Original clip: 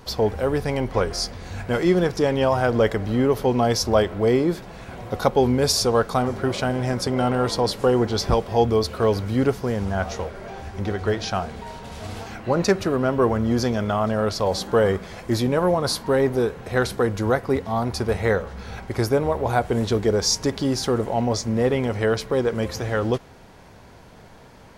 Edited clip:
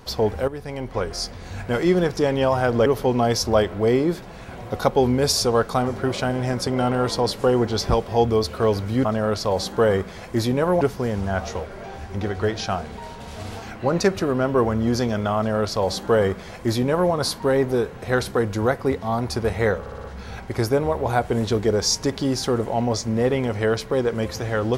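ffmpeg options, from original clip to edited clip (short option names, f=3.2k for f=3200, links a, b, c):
-filter_complex "[0:a]asplit=9[a][b][c][d][e][f][g][h][i];[a]atrim=end=0.48,asetpts=PTS-STARTPTS,afade=t=out:st=0.476:d=0.004:c=hsin:silence=0.237137[j];[b]atrim=start=0.48:end=2.862,asetpts=PTS-STARTPTS,afade=t=in:d=1.37:c=qsin:silence=0.237137[k];[c]atrim=start=3.258:end=9.452[l];[d]atrim=start=13.998:end=15.762[m];[e]atrim=start=9.448:end=18.502[n];[f]atrim=start=18.438:end=18.502[o];[g]atrim=start=18.438:end=18.502[p];[h]atrim=start=18.438:end=18.502[q];[i]atrim=start=18.438[r];[j][k]concat=n=2:v=0:a=1[s];[s][l]acrossfade=d=0.004:c1=hsin:c2=hsin[t];[t][m]acrossfade=d=0.004:c1=hsin:c2=hsin[u];[u][n]acrossfade=d=0.004:c1=hsin:c2=hsin[v];[v][o]acrossfade=d=0.004:c1=hsin:c2=hsin[w];[w][p]acrossfade=d=0.004:c1=hsin:c2=hsin[x];[x][q]acrossfade=d=0.004:c1=hsin:c2=hsin[y];[y][r]acrossfade=d=0.004:c1=hsin:c2=hsin"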